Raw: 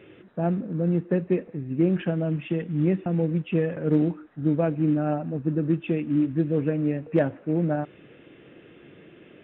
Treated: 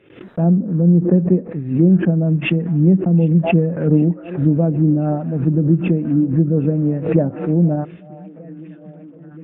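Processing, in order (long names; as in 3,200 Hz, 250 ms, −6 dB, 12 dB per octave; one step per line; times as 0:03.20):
noise gate −45 dBFS, range −31 dB
dynamic equaliser 180 Hz, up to +8 dB, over −38 dBFS, Q 1.9
treble cut that deepens with the level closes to 680 Hz, closed at −17 dBFS
on a send: echo through a band-pass that steps 761 ms, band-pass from 3,200 Hz, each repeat −0.7 octaves, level −7 dB
on the sum: background raised ahead of every attack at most 100 dB per second
level +4.5 dB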